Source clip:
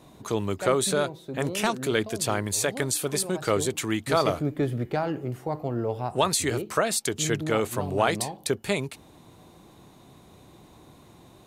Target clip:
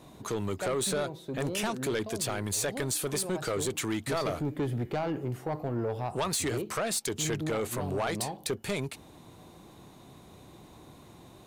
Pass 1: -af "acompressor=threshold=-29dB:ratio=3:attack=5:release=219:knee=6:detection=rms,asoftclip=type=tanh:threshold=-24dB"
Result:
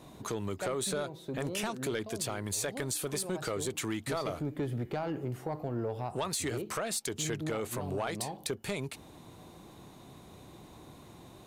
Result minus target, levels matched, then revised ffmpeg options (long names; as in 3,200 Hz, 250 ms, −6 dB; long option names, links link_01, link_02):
downward compressor: peak gain reduction +6 dB
-af "acompressor=threshold=-20dB:ratio=3:attack=5:release=219:knee=6:detection=rms,asoftclip=type=tanh:threshold=-24dB"